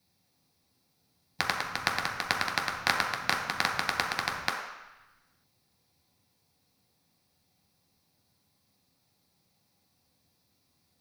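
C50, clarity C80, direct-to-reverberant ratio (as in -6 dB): 4.5 dB, 6.5 dB, -1.5 dB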